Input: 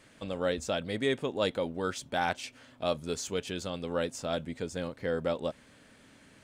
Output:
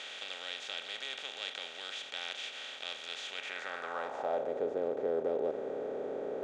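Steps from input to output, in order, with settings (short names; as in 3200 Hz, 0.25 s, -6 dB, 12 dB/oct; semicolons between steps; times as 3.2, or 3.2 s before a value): per-bin compression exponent 0.2; band-pass sweep 3100 Hz -> 430 Hz, 3.29–4.65; gain -5.5 dB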